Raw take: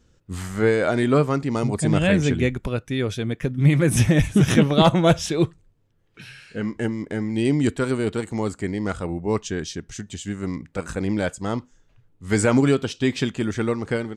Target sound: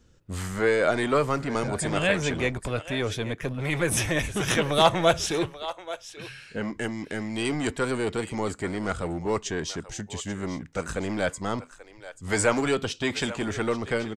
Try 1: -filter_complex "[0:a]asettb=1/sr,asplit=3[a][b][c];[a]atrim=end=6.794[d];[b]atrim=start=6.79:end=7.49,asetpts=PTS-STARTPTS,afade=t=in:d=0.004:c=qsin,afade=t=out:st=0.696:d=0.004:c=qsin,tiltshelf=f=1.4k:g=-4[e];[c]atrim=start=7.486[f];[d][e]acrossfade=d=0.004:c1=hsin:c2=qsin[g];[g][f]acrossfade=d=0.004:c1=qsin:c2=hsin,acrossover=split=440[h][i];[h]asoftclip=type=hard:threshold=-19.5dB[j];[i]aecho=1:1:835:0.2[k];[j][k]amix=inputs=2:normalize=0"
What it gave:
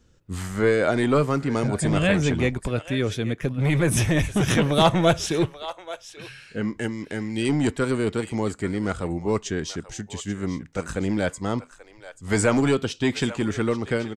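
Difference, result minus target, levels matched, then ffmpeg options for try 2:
hard clip: distortion -6 dB
-filter_complex "[0:a]asettb=1/sr,asplit=3[a][b][c];[a]atrim=end=6.794[d];[b]atrim=start=6.79:end=7.49,asetpts=PTS-STARTPTS,afade=t=in:d=0.004:c=qsin,afade=t=out:st=0.696:d=0.004:c=qsin,tiltshelf=f=1.4k:g=-4[e];[c]atrim=start=7.486[f];[d][e]acrossfade=d=0.004:c1=hsin:c2=qsin[g];[g][f]acrossfade=d=0.004:c1=qsin:c2=hsin,acrossover=split=440[h][i];[h]asoftclip=type=hard:threshold=-30dB[j];[i]aecho=1:1:835:0.2[k];[j][k]amix=inputs=2:normalize=0"

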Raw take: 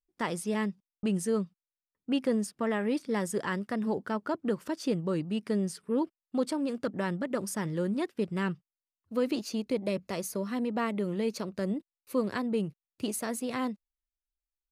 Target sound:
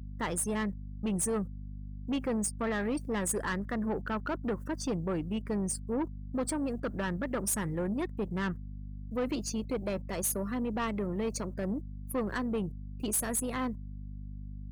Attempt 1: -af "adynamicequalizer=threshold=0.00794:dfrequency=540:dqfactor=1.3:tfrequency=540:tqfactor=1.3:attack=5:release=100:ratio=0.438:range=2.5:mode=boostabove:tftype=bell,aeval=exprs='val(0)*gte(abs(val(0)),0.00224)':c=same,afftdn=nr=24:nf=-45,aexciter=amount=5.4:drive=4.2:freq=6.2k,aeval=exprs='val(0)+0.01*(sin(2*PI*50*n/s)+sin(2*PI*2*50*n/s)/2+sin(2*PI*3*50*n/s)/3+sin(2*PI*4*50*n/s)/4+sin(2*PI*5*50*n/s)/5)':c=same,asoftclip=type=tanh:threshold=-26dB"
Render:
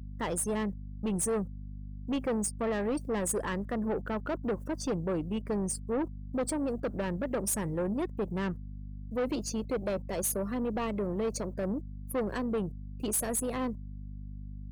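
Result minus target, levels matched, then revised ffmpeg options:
2000 Hz band -3.5 dB
-af "adynamicequalizer=threshold=0.00794:dfrequency=1500:dqfactor=1.3:tfrequency=1500:tqfactor=1.3:attack=5:release=100:ratio=0.438:range=2.5:mode=boostabove:tftype=bell,aeval=exprs='val(0)*gte(abs(val(0)),0.00224)':c=same,afftdn=nr=24:nf=-45,aexciter=amount=5.4:drive=4.2:freq=6.2k,aeval=exprs='val(0)+0.01*(sin(2*PI*50*n/s)+sin(2*PI*2*50*n/s)/2+sin(2*PI*3*50*n/s)/3+sin(2*PI*4*50*n/s)/4+sin(2*PI*5*50*n/s)/5)':c=same,asoftclip=type=tanh:threshold=-26dB"

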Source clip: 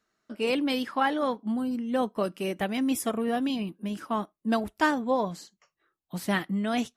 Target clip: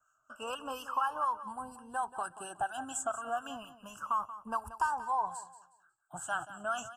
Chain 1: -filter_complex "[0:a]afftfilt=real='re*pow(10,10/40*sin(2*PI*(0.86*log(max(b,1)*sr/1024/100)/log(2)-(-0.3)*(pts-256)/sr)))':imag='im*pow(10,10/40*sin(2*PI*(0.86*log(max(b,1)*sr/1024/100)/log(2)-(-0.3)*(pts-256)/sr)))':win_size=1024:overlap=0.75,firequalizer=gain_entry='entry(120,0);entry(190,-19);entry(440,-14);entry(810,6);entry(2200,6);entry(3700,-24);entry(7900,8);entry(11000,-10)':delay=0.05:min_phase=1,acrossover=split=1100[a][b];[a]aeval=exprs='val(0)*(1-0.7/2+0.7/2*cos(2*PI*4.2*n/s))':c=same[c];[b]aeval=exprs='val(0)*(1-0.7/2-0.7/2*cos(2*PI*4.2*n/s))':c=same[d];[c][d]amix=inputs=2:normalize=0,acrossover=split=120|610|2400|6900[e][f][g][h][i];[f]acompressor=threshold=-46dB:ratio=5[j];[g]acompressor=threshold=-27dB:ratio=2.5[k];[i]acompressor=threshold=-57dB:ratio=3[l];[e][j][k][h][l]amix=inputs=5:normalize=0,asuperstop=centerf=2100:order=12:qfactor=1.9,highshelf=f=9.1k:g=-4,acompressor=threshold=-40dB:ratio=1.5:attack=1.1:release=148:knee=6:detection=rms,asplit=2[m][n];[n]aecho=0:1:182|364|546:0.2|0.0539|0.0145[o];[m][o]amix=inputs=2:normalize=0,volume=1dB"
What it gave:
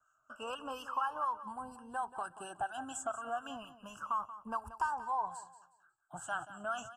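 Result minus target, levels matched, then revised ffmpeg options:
compressor: peak gain reduction +3 dB; 8000 Hz band -3.0 dB
-filter_complex "[0:a]afftfilt=real='re*pow(10,10/40*sin(2*PI*(0.86*log(max(b,1)*sr/1024/100)/log(2)-(-0.3)*(pts-256)/sr)))':imag='im*pow(10,10/40*sin(2*PI*(0.86*log(max(b,1)*sr/1024/100)/log(2)-(-0.3)*(pts-256)/sr)))':win_size=1024:overlap=0.75,firequalizer=gain_entry='entry(120,0);entry(190,-19);entry(440,-14);entry(810,6);entry(2200,6);entry(3700,-24);entry(7900,8);entry(11000,-10)':delay=0.05:min_phase=1,acrossover=split=1100[a][b];[a]aeval=exprs='val(0)*(1-0.7/2+0.7/2*cos(2*PI*4.2*n/s))':c=same[c];[b]aeval=exprs='val(0)*(1-0.7/2-0.7/2*cos(2*PI*4.2*n/s))':c=same[d];[c][d]amix=inputs=2:normalize=0,acrossover=split=120|610|2400|6900[e][f][g][h][i];[f]acompressor=threshold=-46dB:ratio=5[j];[g]acompressor=threshold=-27dB:ratio=2.5[k];[i]acompressor=threshold=-57dB:ratio=3[l];[e][j][k][h][l]amix=inputs=5:normalize=0,asuperstop=centerf=2100:order=12:qfactor=1.9,highshelf=f=9.1k:g=7.5,acompressor=threshold=-31dB:ratio=1.5:attack=1.1:release=148:knee=6:detection=rms,asplit=2[m][n];[n]aecho=0:1:182|364|546:0.2|0.0539|0.0145[o];[m][o]amix=inputs=2:normalize=0,volume=1dB"

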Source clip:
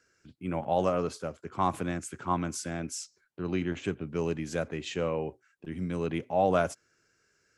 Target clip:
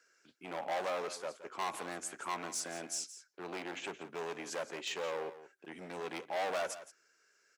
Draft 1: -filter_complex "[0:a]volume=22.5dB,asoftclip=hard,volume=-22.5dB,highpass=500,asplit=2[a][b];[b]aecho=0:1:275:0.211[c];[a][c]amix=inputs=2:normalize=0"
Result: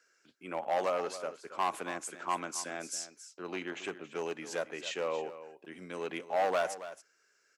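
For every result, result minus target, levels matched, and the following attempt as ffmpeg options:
echo 0.104 s late; overloaded stage: distortion -7 dB
-filter_complex "[0:a]volume=22.5dB,asoftclip=hard,volume=-22.5dB,highpass=500,asplit=2[a][b];[b]aecho=0:1:171:0.211[c];[a][c]amix=inputs=2:normalize=0"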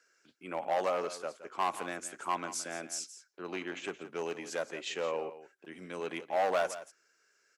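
overloaded stage: distortion -7 dB
-filter_complex "[0:a]volume=31dB,asoftclip=hard,volume=-31dB,highpass=500,asplit=2[a][b];[b]aecho=0:1:171:0.211[c];[a][c]amix=inputs=2:normalize=0"

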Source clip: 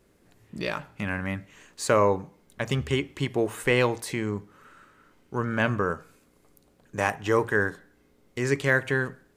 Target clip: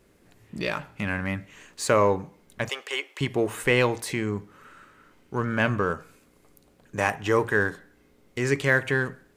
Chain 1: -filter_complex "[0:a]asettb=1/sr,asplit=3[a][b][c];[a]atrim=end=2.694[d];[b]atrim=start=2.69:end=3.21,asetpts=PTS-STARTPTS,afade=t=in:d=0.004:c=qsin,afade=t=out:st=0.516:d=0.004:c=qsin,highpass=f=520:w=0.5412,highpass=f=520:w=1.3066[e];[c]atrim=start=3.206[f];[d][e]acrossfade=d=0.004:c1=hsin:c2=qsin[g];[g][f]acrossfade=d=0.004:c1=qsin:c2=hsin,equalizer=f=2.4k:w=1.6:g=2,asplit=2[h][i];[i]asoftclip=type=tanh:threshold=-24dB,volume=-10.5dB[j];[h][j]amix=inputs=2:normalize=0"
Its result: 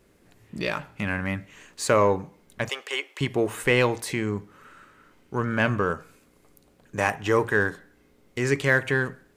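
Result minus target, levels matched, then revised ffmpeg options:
soft clip: distortion -4 dB
-filter_complex "[0:a]asettb=1/sr,asplit=3[a][b][c];[a]atrim=end=2.694[d];[b]atrim=start=2.69:end=3.21,asetpts=PTS-STARTPTS,afade=t=in:d=0.004:c=qsin,afade=t=out:st=0.516:d=0.004:c=qsin,highpass=f=520:w=0.5412,highpass=f=520:w=1.3066[e];[c]atrim=start=3.206[f];[d][e]acrossfade=d=0.004:c1=hsin:c2=qsin[g];[g][f]acrossfade=d=0.004:c1=qsin:c2=hsin,equalizer=f=2.4k:w=1.6:g=2,asplit=2[h][i];[i]asoftclip=type=tanh:threshold=-31.5dB,volume=-10.5dB[j];[h][j]amix=inputs=2:normalize=0"

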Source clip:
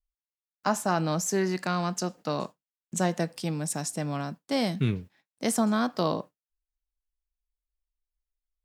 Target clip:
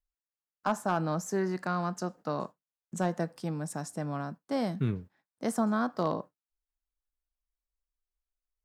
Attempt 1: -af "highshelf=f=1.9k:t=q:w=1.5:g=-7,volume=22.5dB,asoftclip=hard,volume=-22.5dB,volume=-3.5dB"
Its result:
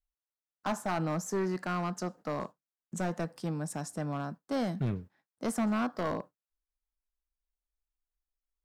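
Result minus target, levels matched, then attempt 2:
overloaded stage: distortion +17 dB
-af "highshelf=f=1.9k:t=q:w=1.5:g=-7,volume=14dB,asoftclip=hard,volume=-14dB,volume=-3.5dB"

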